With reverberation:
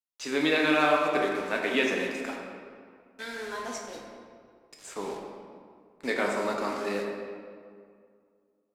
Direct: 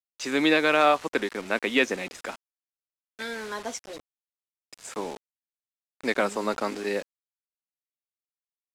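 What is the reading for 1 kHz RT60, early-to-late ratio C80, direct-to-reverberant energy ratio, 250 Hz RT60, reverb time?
2.1 s, 3.0 dB, -1.0 dB, 2.4 s, 2.2 s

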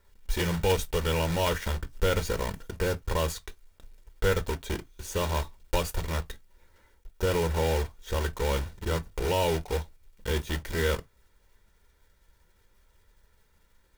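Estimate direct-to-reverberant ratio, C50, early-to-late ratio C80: 10.0 dB, 29.0 dB, 42.5 dB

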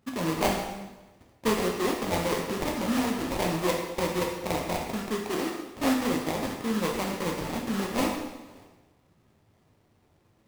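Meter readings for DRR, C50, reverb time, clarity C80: 0.0 dB, 3.5 dB, 1.1 s, 5.5 dB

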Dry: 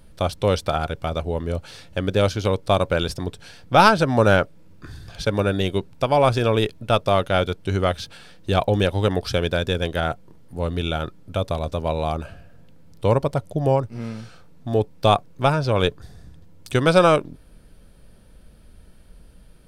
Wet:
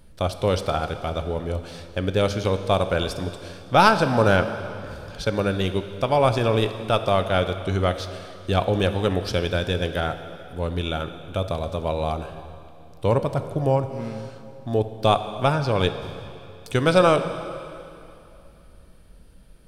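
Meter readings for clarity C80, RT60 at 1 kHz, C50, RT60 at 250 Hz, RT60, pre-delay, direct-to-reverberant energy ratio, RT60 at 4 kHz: 11.0 dB, 2.9 s, 10.0 dB, 2.8 s, 2.8 s, 6 ms, 9.0 dB, 2.6 s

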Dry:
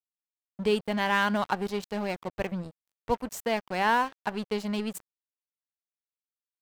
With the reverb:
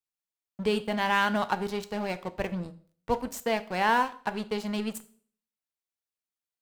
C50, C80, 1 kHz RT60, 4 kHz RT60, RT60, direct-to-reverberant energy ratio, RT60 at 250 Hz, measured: 17.0 dB, 21.5 dB, 0.45 s, 0.45 s, 0.50 s, 11.0 dB, 0.55 s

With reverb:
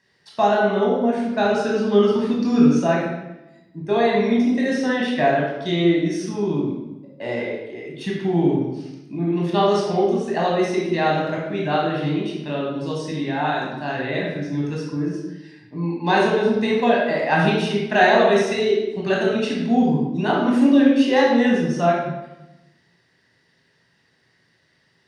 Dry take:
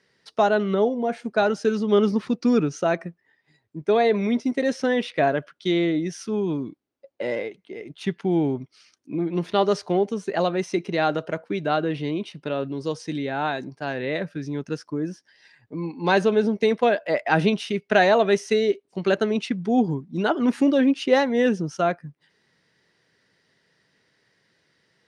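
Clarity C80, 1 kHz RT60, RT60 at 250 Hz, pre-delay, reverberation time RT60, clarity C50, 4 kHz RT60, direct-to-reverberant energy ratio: 4.5 dB, 0.95 s, 1.3 s, 18 ms, 0.95 s, 1.5 dB, 0.80 s, -3.5 dB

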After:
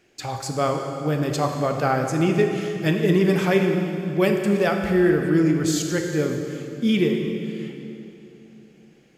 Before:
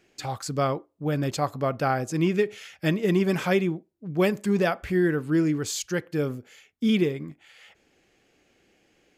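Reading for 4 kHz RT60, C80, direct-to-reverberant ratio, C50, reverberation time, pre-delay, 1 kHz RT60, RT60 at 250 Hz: 2.5 s, 5.0 dB, 3.0 dB, 4.0 dB, 3.0 s, 15 ms, 2.8 s, 3.5 s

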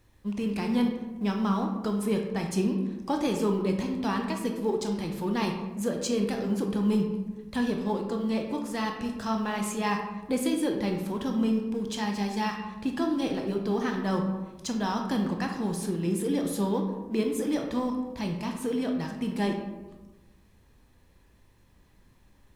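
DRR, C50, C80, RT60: 2.5 dB, 5.5 dB, 8.0 dB, 1.2 s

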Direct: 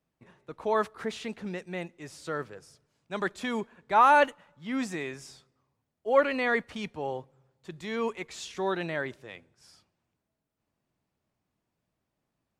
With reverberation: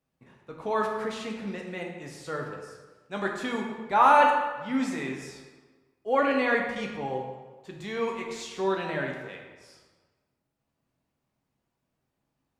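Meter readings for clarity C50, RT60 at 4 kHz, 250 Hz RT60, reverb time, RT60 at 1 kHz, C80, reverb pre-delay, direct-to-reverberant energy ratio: 4.0 dB, 0.95 s, 1.3 s, 1.4 s, 1.4 s, 5.5 dB, 3 ms, 0.0 dB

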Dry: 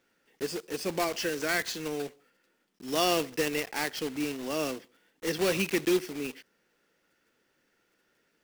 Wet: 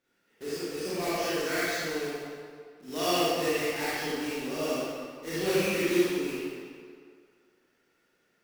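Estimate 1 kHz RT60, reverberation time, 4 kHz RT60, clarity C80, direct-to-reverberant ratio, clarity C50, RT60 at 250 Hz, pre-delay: 2.1 s, 2.1 s, 1.5 s, -3.0 dB, -10.5 dB, -6.0 dB, 1.8 s, 27 ms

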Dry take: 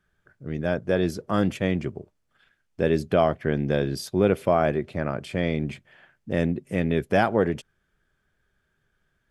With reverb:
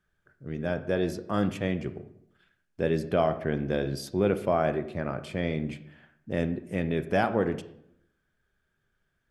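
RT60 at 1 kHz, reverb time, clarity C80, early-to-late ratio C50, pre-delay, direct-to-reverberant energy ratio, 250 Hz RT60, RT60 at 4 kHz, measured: 0.70 s, 0.70 s, 15.5 dB, 13.0 dB, 22 ms, 10.5 dB, 0.85 s, 0.50 s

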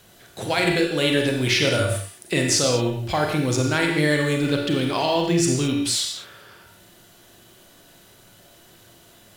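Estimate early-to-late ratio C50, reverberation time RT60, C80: 3.0 dB, no single decay rate, 5.5 dB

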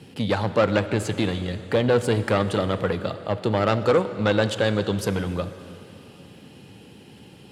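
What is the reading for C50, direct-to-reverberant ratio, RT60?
12.0 dB, 11.0 dB, 3.0 s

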